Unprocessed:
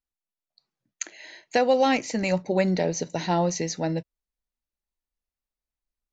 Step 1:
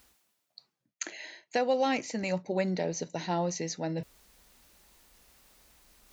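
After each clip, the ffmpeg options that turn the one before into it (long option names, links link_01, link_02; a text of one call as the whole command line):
ffmpeg -i in.wav -af "highpass=frequency=87:poles=1,areverse,acompressor=mode=upward:threshold=-24dB:ratio=2.5,areverse,volume=-6.5dB" out.wav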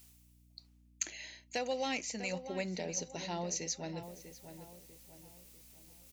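ffmpeg -i in.wav -filter_complex "[0:a]aeval=exprs='val(0)+0.002*(sin(2*PI*60*n/s)+sin(2*PI*2*60*n/s)/2+sin(2*PI*3*60*n/s)/3+sin(2*PI*4*60*n/s)/4+sin(2*PI*5*60*n/s)/5)':channel_layout=same,aexciter=amount=2.1:drive=6.9:freq=2200,asplit=2[link_01][link_02];[link_02]adelay=646,lowpass=frequency=1800:poles=1,volume=-10dB,asplit=2[link_03][link_04];[link_04]adelay=646,lowpass=frequency=1800:poles=1,volume=0.43,asplit=2[link_05][link_06];[link_06]adelay=646,lowpass=frequency=1800:poles=1,volume=0.43,asplit=2[link_07][link_08];[link_08]adelay=646,lowpass=frequency=1800:poles=1,volume=0.43,asplit=2[link_09][link_10];[link_10]adelay=646,lowpass=frequency=1800:poles=1,volume=0.43[link_11];[link_01][link_03][link_05][link_07][link_09][link_11]amix=inputs=6:normalize=0,volume=-9dB" out.wav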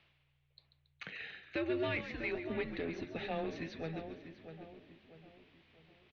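ffmpeg -i in.wav -filter_complex "[0:a]asoftclip=type=tanh:threshold=-31dB,asplit=6[link_01][link_02][link_03][link_04][link_05][link_06];[link_02]adelay=139,afreqshift=-75,volume=-11dB[link_07];[link_03]adelay=278,afreqshift=-150,volume=-17dB[link_08];[link_04]adelay=417,afreqshift=-225,volume=-23dB[link_09];[link_05]adelay=556,afreqshift=-300,volume=-29.1dB[link_10];[link_06]adelay=695,afreqshift=-375,volume=-35.1dB[link_11];[link_01][link_07][link_08][link_09][link_10][link_11]amix=inputs=6:normalize=0,highpass=frequency=280:width_type=q:width=0.5412,highpass=frequency=280:width_type=q:width=1.307,lowpass=frequency=3500:width_type=q:width=0.5176,lowpass=frequency=3500:width_type=q:width=0.7071,lowpass=frequency=3500:width_type=q:width=1.932,afreqshift=-160,volume=3.5dB" out.wav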